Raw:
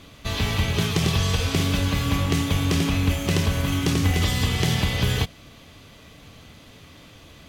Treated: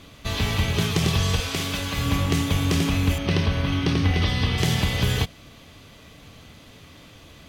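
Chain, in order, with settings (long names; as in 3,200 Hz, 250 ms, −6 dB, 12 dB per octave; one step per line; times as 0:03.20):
0:01.40–0:01.98: low-shelf EQ 400 Hz −9 dB
0:03.18–0:04.58: Savitzky-Golay smoothing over 15 samples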